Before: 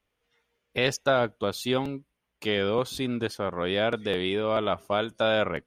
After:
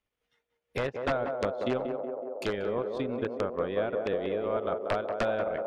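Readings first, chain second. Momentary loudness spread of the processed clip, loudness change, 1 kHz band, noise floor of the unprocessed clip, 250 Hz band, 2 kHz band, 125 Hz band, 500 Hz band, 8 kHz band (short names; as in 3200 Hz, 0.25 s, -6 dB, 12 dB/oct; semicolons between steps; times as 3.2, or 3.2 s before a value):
5 LU, -4.0 dB, -4.0 dB, -80 dBFS, -4.5 dB, -7.5 dB, -6.0 dB, -2.5 dB, under -10 dB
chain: transient shaper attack +9 dB, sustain -11 dB; wrapped overs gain 10 dB; treble ducked by the level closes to 1700 Hz, closed at -21.5 dBFS; on a send: narrowing echo 0.185 s, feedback 84%, band-pass 540 Hz, level -4 dB; on the sum: gain -7.5 dB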